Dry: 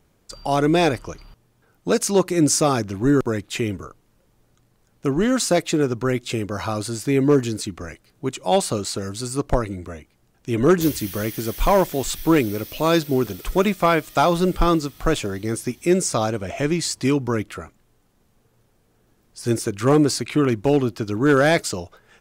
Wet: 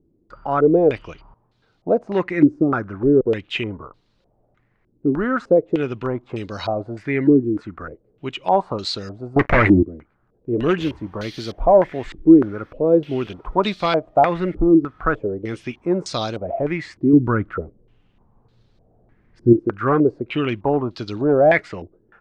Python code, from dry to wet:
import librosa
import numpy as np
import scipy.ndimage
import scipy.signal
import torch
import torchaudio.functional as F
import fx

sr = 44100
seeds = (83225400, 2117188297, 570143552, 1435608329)

y = fx.leveller(x, sr, passes=5, at=(9.36, 9.83))
y = fx.low_shelf(y, sr, hz=280.0, db=10.0, at=(17.13, 19.53))
y = fx.filter_held_lowpass(y, sr, hz=3.3, low_hz=330.0, high_hz=4100.0)
y = y * 10.0 ** (-3.5 / 20.0)